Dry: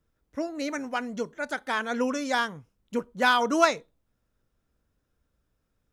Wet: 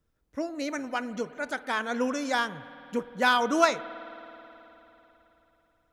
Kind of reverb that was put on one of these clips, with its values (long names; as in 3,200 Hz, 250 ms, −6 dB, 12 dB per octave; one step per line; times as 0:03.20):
spring reverb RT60 3.6 s, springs 52 ms, chirp 35 ms, DRR 15 dB
level −1 dB